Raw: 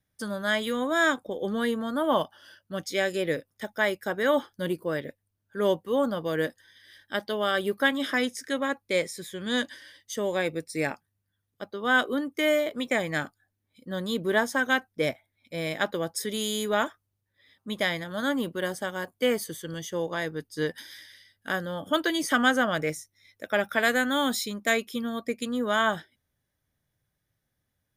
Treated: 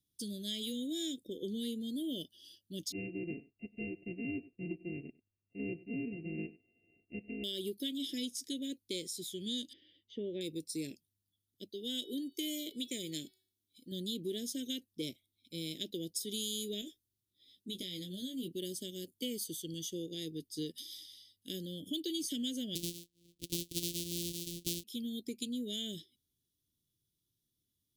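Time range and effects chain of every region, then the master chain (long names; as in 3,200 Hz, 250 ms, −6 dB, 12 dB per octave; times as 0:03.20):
0:02.92–0:07.44: samples sorted by size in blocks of 64 samples + linear-phase brick-wall low-pass 2,800 Hz + single-tap delay 97 ms −21 dB
0:09.73–0:10.41: low-pass filter 2,500 Hz 24 dB per octave + parametric band 1,000 Hz +4 dB 1.9 octaves
0:11.69–0:13.92: bass and treble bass −5 dB, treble +3 dB + hum removal 375 Hz, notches 14
0:16.81–0:18.48: downward compressor, threshold −29 dBFS + double-tracking delay 16 ms −5.5 dB
0:22.75–0:24.84: samples sorted by size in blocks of 256 samples + high-shelf EQ 3,400 Hz +7 dB + one half of a high-frequency compander decoder only
whole clip: elliptic band-stop filter 360–3,300 Hz, stop band 80 dB; low-shelf EQ 200 Hz −11 dB; downward compressor 3 to 1, threshold −36 dBFS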